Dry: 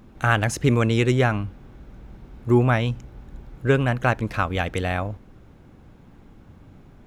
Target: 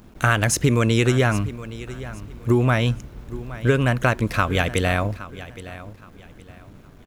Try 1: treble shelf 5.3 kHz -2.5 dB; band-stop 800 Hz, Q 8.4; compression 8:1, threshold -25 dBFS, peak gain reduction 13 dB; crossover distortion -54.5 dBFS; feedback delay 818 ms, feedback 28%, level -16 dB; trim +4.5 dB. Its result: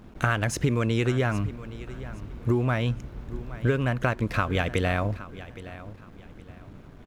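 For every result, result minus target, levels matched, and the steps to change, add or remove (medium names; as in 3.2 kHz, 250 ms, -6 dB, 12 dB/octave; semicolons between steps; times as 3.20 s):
compression: peak gain reduction +6 dB; 8 kHz band -5.5 dB
change: compression 8:1, threshold -18 dBFS, peak gain reduction 6.5 dB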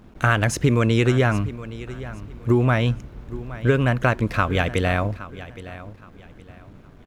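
8 kHz band -7.0 dB
change: treble shelf 5.3 kHz +8.5 dB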